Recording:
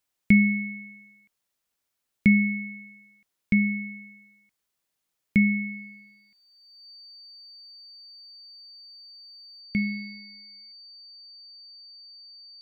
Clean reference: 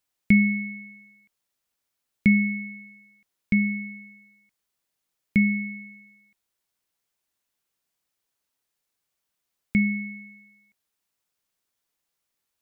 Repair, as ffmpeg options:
-af "bandreject=f=4600:w=30,asetnsamples=n=441:p=0,asendcmd='9.61 volume volume 4.5dB',volume=1"

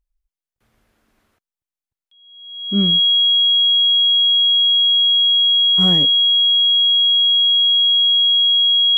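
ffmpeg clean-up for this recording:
-af "bandreject=f=3300:w=30"

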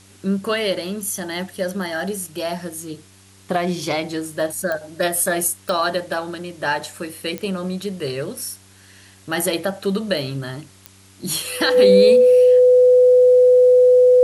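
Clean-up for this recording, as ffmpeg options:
-af "adeclick=t=4,bandreject=f=96.6:t=h:w=4,bandreject=f=193.2:t=h:w=4,bandreject=f=289.8:t=h:w=4,bandreject=f=386.4:t=h:w=4,bandreject=f=500:w=30,agate=range=0.0891:threshold=0.01"

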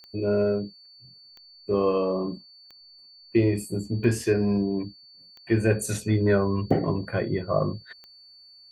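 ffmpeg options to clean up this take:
-af "adeclick=t=4,bandreject=f=4500:w=30"

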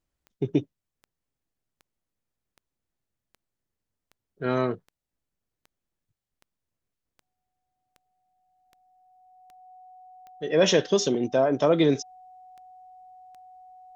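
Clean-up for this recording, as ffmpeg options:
-af "adeclick=t=4,bandreject=f=740:w=30"

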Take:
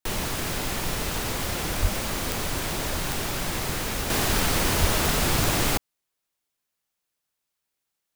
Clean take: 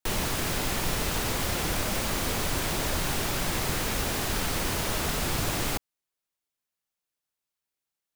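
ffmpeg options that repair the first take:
-filter_complex "[0:a]adeclick=t=4,asplit=3[s0][s1][s2];[s0]afade=t=out:st=1.81:d=0.02[s3];[s1]highpass=f=140:w=0.5412,highpass=f=140:w=1.3066,afade=t=in:st=1.81:d=0.02,afade=t=out:st=1.93:d=0.02[s4];[s2]afade=t=in:st=1.93:d=0.02[s5];[s3][s4][s5]amix=inputs=3:normalize=0,asplit=3[s6][s7][s8];[s6]afade=t=out:st=4.8:d=0.02[s9];[s7]highpass=f=140:w=0.5412,highpass=f=140:w=1.3066,afade=t=in:st=4.8:d=0.02,afade=t=out:st=4.92:d=0.02[s10];[s8]afade=t=in:st=4.92:d=0.02[s11];[s9][s10][s11]amix=inputs=3:normalize=0,asetnsamples=n=441:p=0,asendcmd='4.1 volume volume -5.5dB',volume=1"

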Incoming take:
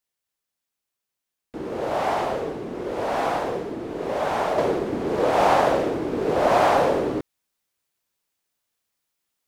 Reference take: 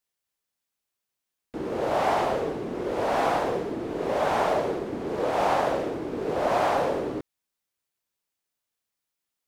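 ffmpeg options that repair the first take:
-af "asetnsamples=n=441:p=0,asendcmd='4.58 volume volume -5.5dB',volume=1"

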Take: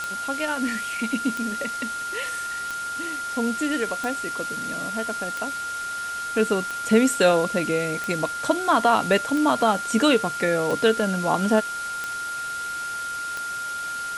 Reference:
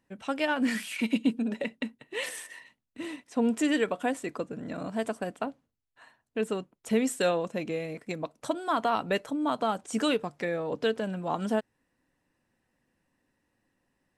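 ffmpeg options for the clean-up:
-af "adeclick=t=4,bandreject=f=1400:w=30,afwtdn=0.014,asetnsamples=n=441:p=0,asendcmd='6.23 volume volume -8dB',volume=1"

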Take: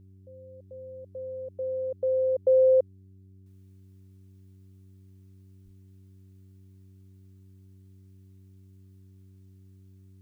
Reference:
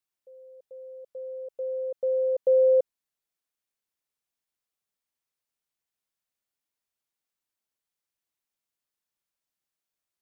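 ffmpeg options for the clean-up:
-filter_complex "[0:a]bandreject=f=95.4:t=h:w=4,bandreject=f=190.8:t=h:w=4,bandreject=f=286.2:t=h:w=4,bandreject=f=381.6:t=h:w=4,asplit=3[s0][s1][s2];[s0]afade=t=out:st=5.64:d=0.02[s3];[s1]highpass=f=140:w=0.5412,highpass=f=140:w=1.3066,afade=t=in:st=5.64:d=0.02,afade=t=out:st=5.76:d=0.02[s4];[s2]afade=t=in:st=5.76:d=0.02[s5];[s3][s4][s5]amix=inputs=3:normalize=0,asetnsamples=n=441:p=0,asendcmd='3.46 volume volume -10.5dB',volume=1"

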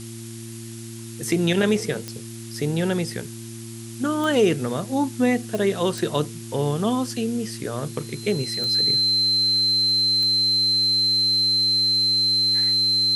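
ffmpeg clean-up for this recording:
-af "adeclick=t=4,bandreject=f=114.1:t=h:w=4,bandreject=f=228.2:t=h:w=4,bandreject=f=342.3:t=h:w=4,bandreject=f=4100:w=30,afftdn=nr=30:nf=-36"

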